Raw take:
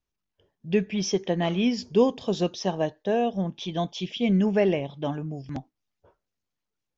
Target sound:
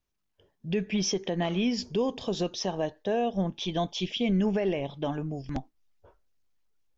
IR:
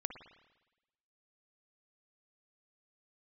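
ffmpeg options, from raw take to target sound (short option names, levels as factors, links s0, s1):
-af "asubboost=boost=5.5:cutoff=53,alimiter=limit=0.0891:level=0:latency=1:release=131,volume=1.26"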